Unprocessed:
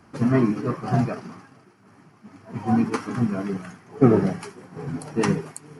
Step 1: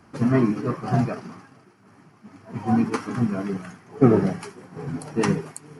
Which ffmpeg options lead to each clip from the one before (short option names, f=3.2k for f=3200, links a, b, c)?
-af anull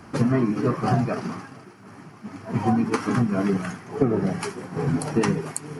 -af "acompressor=threshold=-26dB:ratio=12,volume=8.5dB"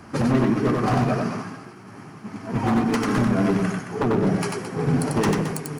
-filter_complex "[0:a]aeval=exprs='0.15*(abs(mod(val(0)/0.15+3,4)-2)-1)':c=same,asplit=2[a][b];[b]aecho=0:1:93.29|218.7:0.708|0.316[c];[a][c]amix=inputs=2:normalize=0,volume=1dB"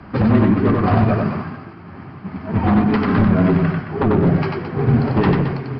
-af "aresample=11025,aresample=44100,afreqshift=-20,bass=f=250:g=3,treble=f=4k:g=-11,volume=4dB"